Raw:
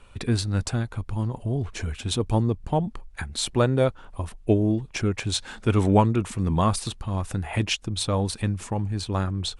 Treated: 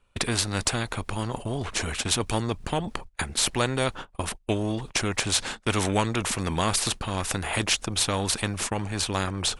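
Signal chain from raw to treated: gate -36 dBFS, range -30 dB; spectral compressor 2:1

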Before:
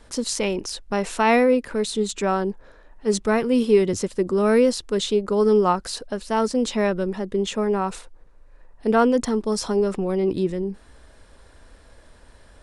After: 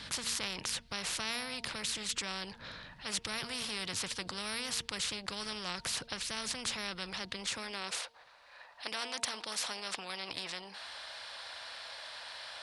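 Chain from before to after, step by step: EQ curve 100 Hz 0 dB, 390 Hz -24 dB, 4400 Hz +3 dB, 7000 Hz -14 dB; high-pass sweep 160 Hz -> 690 Hz, 7.3–8.16; de-hum 230.6 Hz, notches 4; spectral compressor 4:1

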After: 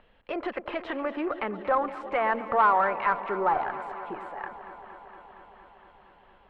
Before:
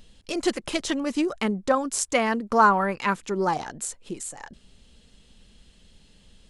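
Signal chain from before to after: sine folder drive 3 dB, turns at -6 dBFS; limiter -12.5 dBFS, peak gain reduction 6.5 dB; three-band isolator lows -19 dB, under 530 Hz, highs -21 dB, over 2500 Hz; added harmonics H 6 -30 dB, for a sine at -10 dBFS; air absorption 430 m; on a send: echo with dull and thin repeats by turns 0.116 s, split 860 Hz, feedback 88%, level -13 dB; on the sum: gain +1.5 dB

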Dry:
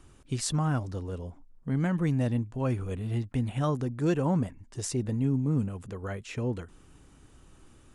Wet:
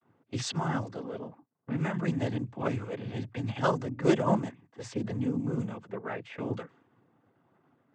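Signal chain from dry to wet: expander -48 dBFS; low-pass opened by the level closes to 1100 Hz, open at -22 dBFS; low shelf 230 Hz -11 dB; in parallel at +2.5 dB: level quantiser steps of 15 dB; on the sum: noise vocoder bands 16

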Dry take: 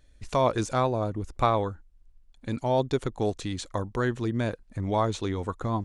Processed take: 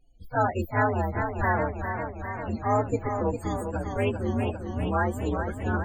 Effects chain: inharmonic rescaling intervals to 126%; loudest bins only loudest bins 32; warbling echo 0.401 s, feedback 70%, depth 70 cents, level -7 dB; gain +1.5 dB

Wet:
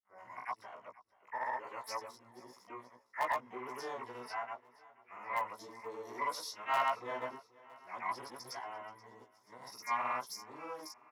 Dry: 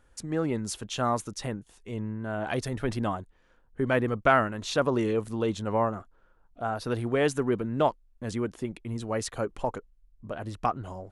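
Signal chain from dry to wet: whole clip reversed; high shelf 3600 Hz -3.5 dB; grains 0.171 s, pitch spread up and down by 0 st; expander -56 dBFS; double band-pass 2300 Hz, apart 2.4 oct; harmoniser +12 st -8 dB; in parallel at -11.5 dB: wrapped overs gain 27.5 dB; on the sum: doubler 16 ms -5 dB; on a send: feedback echo 0.48 s, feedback 49%, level -21 dB; on the sum: core saturation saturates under 820 Hz; gain +2.5 dB

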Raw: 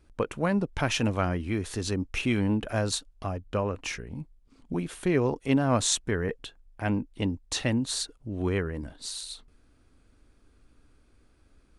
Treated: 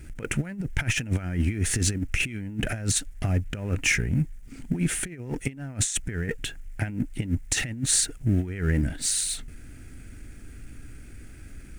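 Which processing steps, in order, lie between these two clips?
G.711 law mismatch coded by mu; high shelf 7500 Hz -2.5 dB; notch 1100 Hz, Q 5.6; negative-ratio compressor -31 dBFS, ratio -0.5; ten-band EQ 125 Hz +4 dB, 500 Hz -7 dB, 1000 Hz -10 dB, 2000 Hz +7 dB, 4000 Hz -10 dB, 8000 Hz +6 dB; gain +5.5 dB

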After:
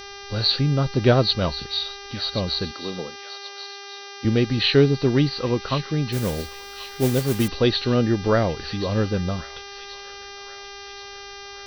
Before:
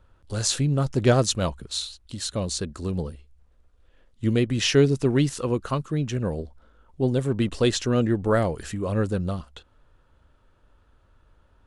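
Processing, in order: nonlinear frequency compression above 3700 Hz 4:1; on a send: thin delay 1.08 s, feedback 51%, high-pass 1600 Hz, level -12.5 dB; on the sum: buzz 400 Hz, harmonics 15, -41 dBFS -2 dB/oct; 2.71–4.25 HPF 280 Hz 12 dB/oct; 6.12–7.48 modulation noise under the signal 14 dB; gain +2 dB

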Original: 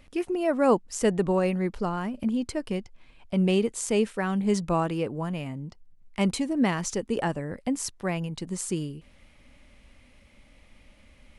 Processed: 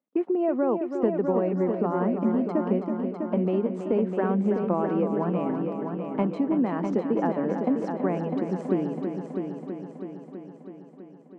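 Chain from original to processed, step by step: LPF 1000 Hz 12 dB/oct; gate -44 dBFS, range -33 dB; steep high-pass 190 Hz 36 dB/oct; compressor, threshold -30 dBFS, peak gain reduction 13 dB; on a send: multi-head echo 0.326 s, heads first and second, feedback 61%, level -8.5 dB; on the sum: gain +8 dB

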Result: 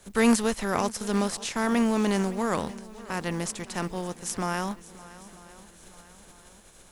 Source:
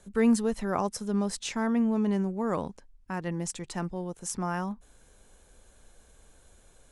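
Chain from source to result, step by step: spectral contrast lowered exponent 0.64; swung echo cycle 0.944 s, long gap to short 1.5:1, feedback 43%, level -18.5 dB; gain +2 dB

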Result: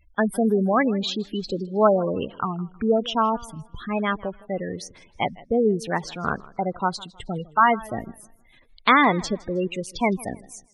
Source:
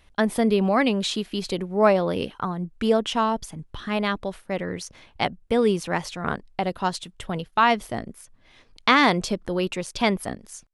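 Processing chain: spectral gate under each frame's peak -15 dB strong; bell 1300 Hz +3.5 dB 0.78 oct; warbling echo 0.158 s, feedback 34%, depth 142 cents, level -21.5 dB

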